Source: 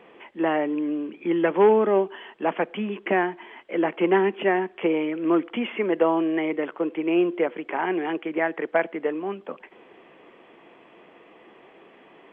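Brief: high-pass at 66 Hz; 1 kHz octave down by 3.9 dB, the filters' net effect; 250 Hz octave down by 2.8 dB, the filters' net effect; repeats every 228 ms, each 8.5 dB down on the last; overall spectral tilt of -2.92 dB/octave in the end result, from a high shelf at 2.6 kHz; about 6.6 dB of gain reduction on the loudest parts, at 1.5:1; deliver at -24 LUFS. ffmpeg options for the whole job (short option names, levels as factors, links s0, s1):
-af "highpass=66,equalizer=f=250:t=o:g=-4,equalizer=f=1000:t=o:g=-6,highshelf=f=2600:g=8,acompressor=threshold=0.02:ratio=1.5,aecho=1:1:228|456|684|912:0.376|0.143|0.0543|0.0206,volume=2.11"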